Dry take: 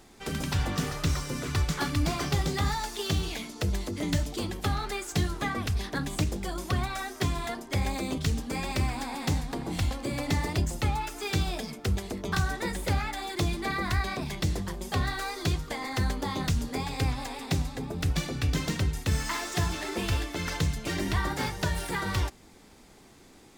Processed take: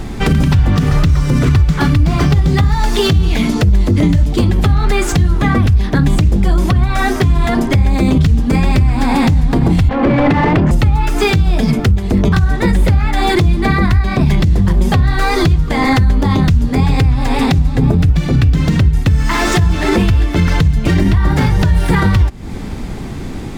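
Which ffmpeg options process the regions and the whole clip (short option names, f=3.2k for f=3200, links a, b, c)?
-filter_complex "[0:a]asettb=1/sr,asplit=3[a][b][c];[a]atrim=end=9.894[d];[b]atrim=start=9.89:end=10.71,asetpts=PTS-STARTPTS,afade=t=in:d=0.004:c=qsin,afade=t=out:st=0.816:d=0.004:c=qsin,highpass=130,adynamicsmooth=sensitivity=1.5:basefreq=1.8k,asplit=2[e][f];[f]highpass=f=720:p=1,volume=25dB,asoftclip=type=tanh:threshold=-18dB[g];[e][g]amix=inputs=2:normalize=0,lowpass=f=2.5k:p=1,volume=-6dB[h];[c]atrim=start=10.706[i];[d][h]acrossfade=d=0.004:c1=hsin:c2=qsin[j];[j][i]acrossfade=d=0.004:c1=qsin:c2=hsin,bass=f=250:g=13,treble=f=4k:g=-8,acompressor=threshold=-28dB:ratio=12,alimiter=level_in=26dB:limit=-1dB:release=50:level=0:latency=1,volume=-2.5dB"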